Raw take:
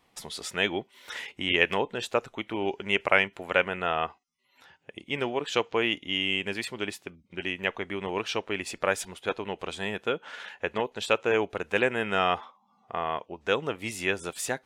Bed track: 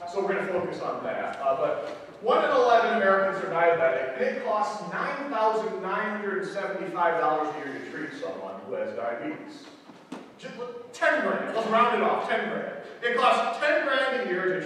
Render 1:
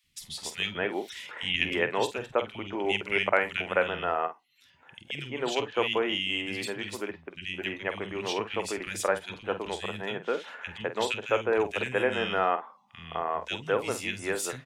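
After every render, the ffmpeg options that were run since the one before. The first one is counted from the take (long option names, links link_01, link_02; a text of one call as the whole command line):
ffmpeg -i in.wav -filter_complex "[0:a]asplit=2[link_01][link_02];[link_02]adelay=48,volume=-11dB[link_03];[link_01][link_03]amix=inputs=2:normalize=0,acrossover=split=210|2100[link_04][link_05][link_06];[link_04]adelay=40[link_07];[link_05]adelay=210[link_08];[link_07][link_08][link_06]amix=inputs=3:normalize=0" out.wav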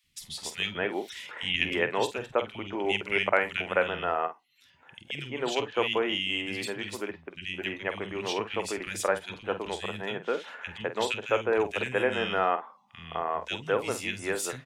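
ffmpeg -i in.wav -af anull out.wav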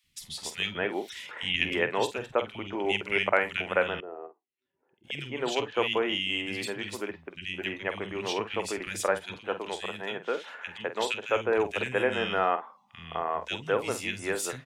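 ffmpeg -i in.wav -filter_complex "[0:a]asettb=1/sr,asplit=3[link_01][link_02][link_03];[link_01]atrim=end=4.004[link_04];[link_02]atrim=start=4:end=5.04,asetpts=PTS-STARTPTS,afade=type=in:duration=0.004:curve=qsin,afade=type=out:start_time=1.036:duration=0.004:curve=qsin,bandpass=frequency=380:width_type=q:width=4.2[link_05];[link_03]atrim=start=5.036[link_06];[link_04][link_05]acrossfade=duration=0.004:curve1=hsin:curve2=qsin[link_07];[link_07][link_06]acrossfade=duration=0.004:curve1=qsin:curve2=hsin,asettb=1/sr,asplit=3[link_08][link_09][link_10];[link_08]atrim=end=9.384[link_11];[link_09]atrim=start=9.38:end=11.36,asetpts=PTS-STARTPTS,afade=type=in:duration=0.004:curve=qsin,afade=type=out:start_time=1.976:duration=0.004:curve=qsin,highpass=frequency=260:poles=1[link_12];[link_10]atrim=start=11.356[link_13];[link_11][link_12]acrossfade=duration=0.004:curve1=hsin:curve2=qsin[link_14];[link_14][link_13]acrossfade=duration=0.004:curve1=qsin:curve2=hsin" out.wav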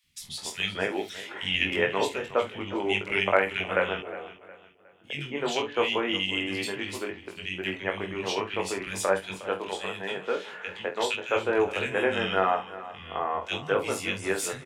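ffmpeg -i in.wav -filter_complex "[0:a]asplit=2[link_01][link_02];[link_02]adelay=21,volume=-3.5dB[link_03];[link_01][link_03]amix=inputs=2:normalize=0,aecho=1:1:361|722|1083:0.158|0.0602|0.0229" out.wav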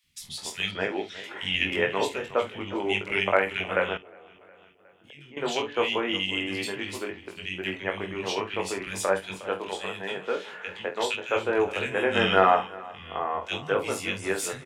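ffmpeg -i in.wav -filter_complex "[0:a]asettb=1/sr,asplit=3[link_01][link_02][link_03];[link_01]atrim=end=0.714[link_04];[link_02]atrim=start=0.71:end=1.24,asetpts=PTS-STARTPTS,afade=type=in:duration=0.004:curve=qsin,afade=type=out:start_time=0.526:duration=0.004:curve=qsin,lowpass=4700[link_05];[link_03]atrim=start=1.236[link_06];[link_04][link_05]acrossfade=duration=0.004:curve1=hsin:curve2=qsin[link_07];[link_07][link_06]acrossfade=duration=0.004:curve1=qsin:curve2=hsin,asettb=1/sr,asplit=3[link_08][link_09][link_10];[link_08]atrim=end=3.974[link_11];[link_09]atrim=start=3.97:end=5.37,asetpts=PTS-STARTPTS,afade=type=in:duration=0.004:curve=qsin,afade=type=out:start_time=1.396:duration=0.004:curve=qsin,acompressor=threshold=-49dB:ratio=3:attack=3.2:release=140:knee=1:detection=peak[link_12];[link_10]atrim=start=5.366[link_13];[link_11][link_12]acrossfade=duration=0.004:curve1=hsin:curve2=qsin[link_14];[link_14][link_13]acrossfade=duration=0.004:curve1=qsin:curve2=hsin,asplit=3[link_15][link_16][link_17];[link_15]afade=type=out:start_time=12.14:duration=0.02[link_18];[link_16]acontrast=40,afade=type=in:start_time=12.14:duration=0.02,afade=type=out:start_time=12.66:duration=0.02[link_19];[link_17]afade=type=in:start_time=12.66:duration=0.02[link_20];[link_18][link_19][link_20]amix=inputs=3:normalize=0" out.wav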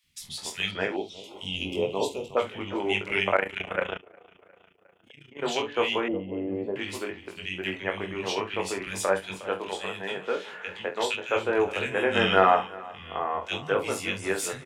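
ffmpeg -i in.wav -filter_complex "[0:a]asettb=1/sr,asplit=3[link_01][link_02][link_03];[link_01]atrim=end=0.964[link_04];[link_02]atrim=start=0.96:end=2.37,asetpts=PTS-STARTPTS,afade=type=in:duration=0.004:curve=qsin,afade=type=out:start_time=1.406:duration=0.004:curve=qsin,asuperstop=centerf=1700:order=4:qfactor=0.73[link_05];[link_03]atrim=start=2.366[link_06];[link_04][link_05]acrossfade=duration=0.004:curve1=hsin:curve2=qsin[link_07];[link_07][link_06]acrossfade=duration=0.004:curve1=qsin:curve2=hsin,asplit=3[link_08][link_09][link_10];[link_08]afade=type=out:start_time=3.34:duration=0.02[link_11];[link_09]tremolo=f=28:d=0.824,afade=type=in:start_time=3.34:duration=0.02,afade=type=out:start_time=5.41:duration=0.02[link_12];[link_10]afade=type=in:start_time=5.41:duration=0.02[link_13];[link_11][link_12][link_13]amix=inputs=3:normalize=0,asettb=1/sr,asplit=3[link_14][link_15][link_16];[link_14]atrim=end=6.084[link_17];[link_15]atrim=start=6.08:end=6.76,asetpts=PTS-STARTPTS,afade=type=in:duration=0.004:curve=qsin,afade=type=out:start_time=0.676:duration=0.004:curve=qsin,lowpass=frequency=570:width_type=q:width=2.5[link_18];[link_16]atrim=start=6.756[link_19];[link_17][link_18]acrossfade=duration=0.004:curve1=hsin:curve2=qsin[link_20];[link_20][link_19]acrossfade=duration=0.004:curve1=qsin:curve2=hsin" out.wav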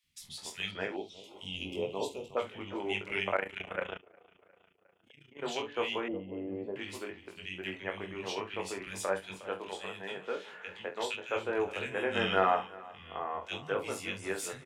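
ffmpeg -i in.wav -af "volume=-7.5dB" out.wav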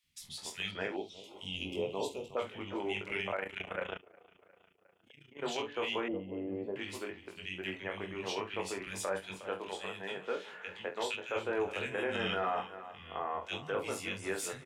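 ffmpeg -i in.wav -af "alimiter=level_in=0.5dB:limit=-24dB:level=0:latency=1:release=10,volume=-0.5dB" out.wav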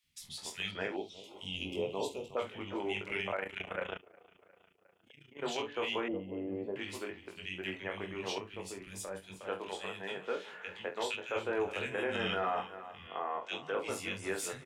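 ffmpeg -i in.wav -filter_complex "[0:a]asettb=1/sr,asplit=3[link_01][link_02][link_03];[link_01]atrim=end=8.384[link_04];[link_02]atrim=start=8.38:end=9.41,asetpts=PTS-STARTPTS,afade=type=in:duration=0.004:curve=qsin,afade=type=out:start_time=1.026:duration=0.004:curve=qsin,equalizer=frequency=1300:width=0.3:gain=-10[link_05];[link_03]atrim=start=9.406[link_06];[link_04][link_05]acrossfade=duration=0.004:curve1=hsin:curve2=qsin[link_07];[link_07][link_06]acrossfade=duration=0.004:curve1=qsin:curve2=hsin,asettb=1/sr,asplit=3[link_08][link_09][link_10];[link_08]atrim=end=13.074[link_11];[link_09]atrim=start=13.07:end=13.89,asetpts=PTS-STARTPTS,afade=type=in:duration=0.004:curve=qsin,afade=type=out:start_time=0.816:duration=0.004:curve=qsin,highpass=220,lowpass=7600[link_12];[link_10]atrim=start=13.886[link_13];[link_11][link_12]acrossfade=duration=0.004:curve1=hsin:curve2=qsin[link_14];[link_14][link_13]acrossfade=duration=0.004:curve1=qsin:curve2=hsin" out.wav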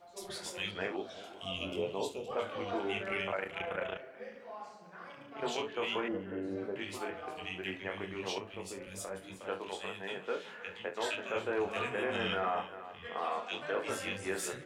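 ffmpeg -i in.wav -i bed.wav -filter_complex "[1:a]volume=-20dB[link_01];[0:a][link_01]amix=inputs=2:normalize=0" out.wav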